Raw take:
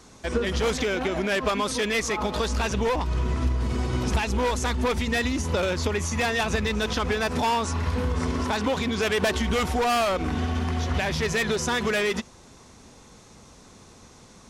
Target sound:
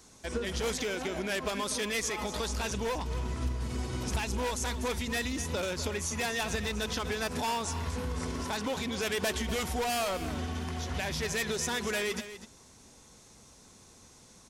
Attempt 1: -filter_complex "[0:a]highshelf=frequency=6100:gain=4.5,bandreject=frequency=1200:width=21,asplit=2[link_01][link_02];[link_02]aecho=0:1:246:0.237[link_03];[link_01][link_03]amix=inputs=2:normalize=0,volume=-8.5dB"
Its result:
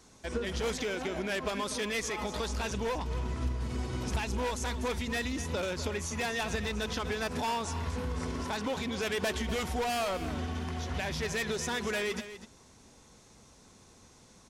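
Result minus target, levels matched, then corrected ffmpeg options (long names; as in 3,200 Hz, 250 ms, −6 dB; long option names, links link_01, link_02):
8,000 Hz band −3.5 dB
-filter_complex "[0:a]highshelf=frequency=6100:gain=12,bandreject=frequency=1200:width=21,asplit=2[link_01][link_02];[link_02]aecho=0:1:246:0.237[link_03];[link_01][link_03]amix=inputs=2:normalize=0,volume=-8.5dB"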